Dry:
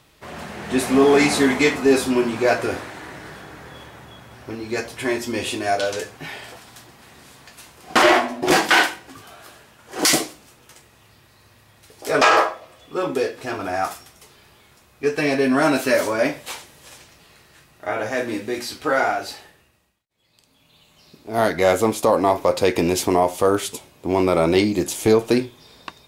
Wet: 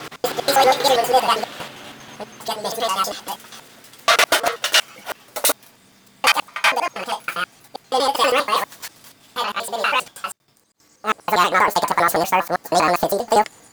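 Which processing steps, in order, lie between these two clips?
slices played last to first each 152 ms, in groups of 3; wide varispeed 1.9×; trim +1 dB

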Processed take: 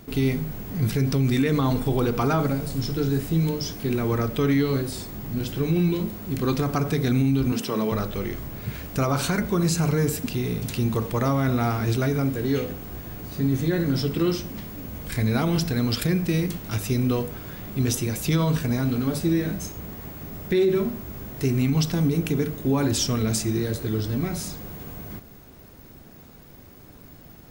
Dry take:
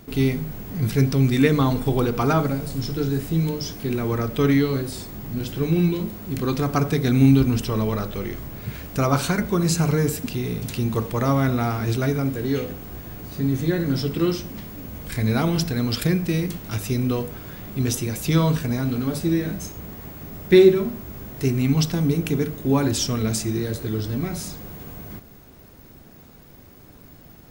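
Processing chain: 7.52–7.92 s: high-pass 170 Hz 24 dB/octave; peak limiter -13.5 dBFS, peak gain reduction 10.5 dB

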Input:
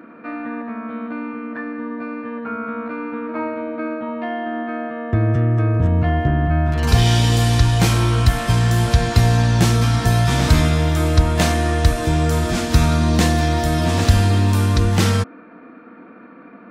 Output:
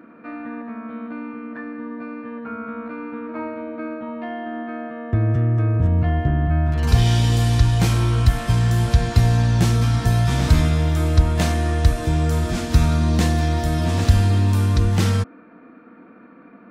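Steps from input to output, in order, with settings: bass shelf 180 Hz +6 dB; trim -5.5 dB

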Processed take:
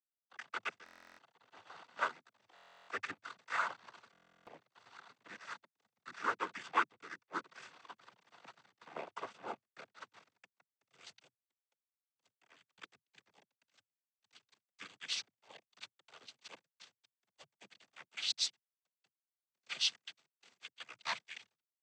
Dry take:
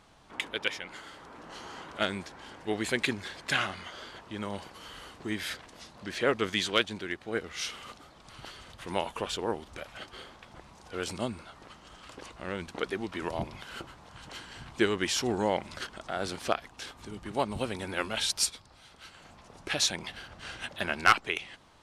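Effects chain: sawtooth pitch modulation -4 st, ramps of 571 ms; treble shelf 2.3 kHz -4 dB; in parallel at -2 dB: compression 16:1, threshold -46 dBFS, peak gain reduction 29.5 dB; on the sum: band-pass sweep 1.2 kHz -> 3.9 kHz, 10.12–11.10 s; echo that smears into a reverb 1520 ms, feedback 58%, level -15 dB; crossover distortion -46.5 dBFS; noise-vocoded speech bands 16; buffer glitch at 0.84/2.54/4.12/11.81 s, samples 1024, times 14; trim +3 dB

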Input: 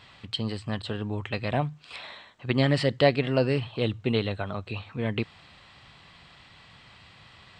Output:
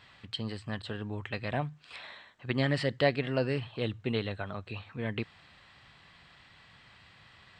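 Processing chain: peaking EQ 1.7 kHz +5 dB 0.52 oct; trim -6 dB

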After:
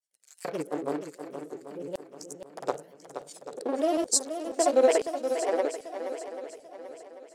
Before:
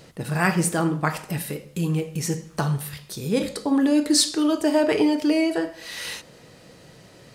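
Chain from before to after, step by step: local Wiener filter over 41 samples; hum notches 50/100/150 Hz; LFO high-pass square 1 Hz 520–7200 Hz; granulator 100 ms, grains 20 per s, pitch spread up and down by 3 st; shuffle delay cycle 789 ms, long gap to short 1.5:1, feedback 37%, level -9 dB; trim -3.5 dB

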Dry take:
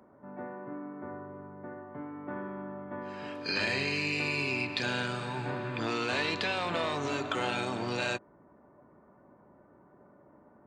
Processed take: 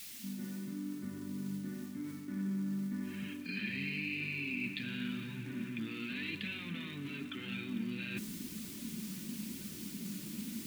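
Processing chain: fade-in on the opening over 1.20 s; steep low-pass 3.6 kHz 36 dB/octave; bass shelf 420 Hz +4.5 dB; in parallel at -12 dB: word length cut 8-bit, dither triangular; on the sum: flange 0.93 Hz, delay 1.4 ms, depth 5.4 ms, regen -38%; reverse; compression 6:1, threshold -53 dBFS, peak gain reduction 22.5 dB; reverse; FFT filter 130 Hz 0 dB, 210 Hz +14 dB, 690 Hz -23 dB, 2.2 kHz +7 dB; crackle 470 per s -60 dBFS; trim +9.5 dB

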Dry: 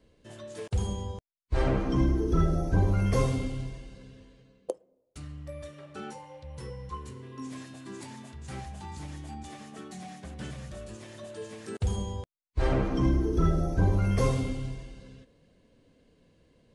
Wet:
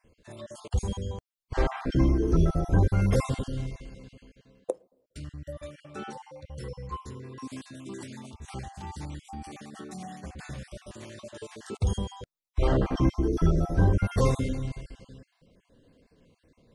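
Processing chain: random holes in the spectrogram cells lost 35%; trim +2.5 dB

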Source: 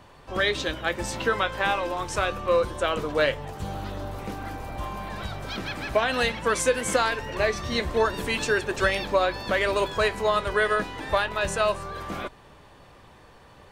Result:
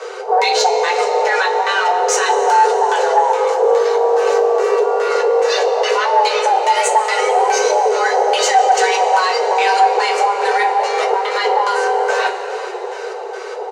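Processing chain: bass shelf 180 Hz +10.5 dB; band-stop 3 kHz, Q 9.5; in parallel at +2 dB: compression, threshold -36 dBFS, peak gain reduction 19.5 dB; on the sum: peak limiter -17.5 dBFS, peak gain reduction 11 dB; LFO low-pass square 2.4 Hz 450–6300 Hz; two-slope reverb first 0.2 s, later 4.7 s, from -20 dB, DRR -2 dB; saturation -11.5 dBFS, distortion -21 dB; on a send: feedback delay 395 ms, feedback 58%, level -21 dB; on the sum: frequency shift +370 Hz; trim +7.5 dB

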